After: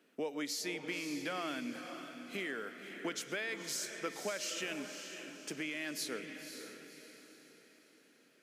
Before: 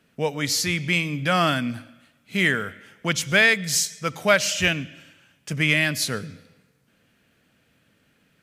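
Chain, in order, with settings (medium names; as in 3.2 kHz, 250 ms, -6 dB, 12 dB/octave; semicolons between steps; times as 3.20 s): peak limiter -12.5 dBFS, peak gain reduction 8.5 dB; compression 6:1, threshold -30 dBFS, peak gain reduction 12 dB; ladder high-pass 260 Hz, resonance 45%; echo that smears into a reverb 535 ms, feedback 43%, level -8 dB; trim +2 dB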